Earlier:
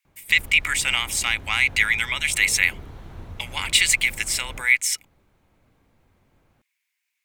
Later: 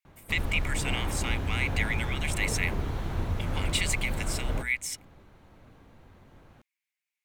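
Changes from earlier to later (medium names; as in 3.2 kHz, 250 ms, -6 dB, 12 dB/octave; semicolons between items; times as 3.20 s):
speech -11.5 dB; background +8.5 dB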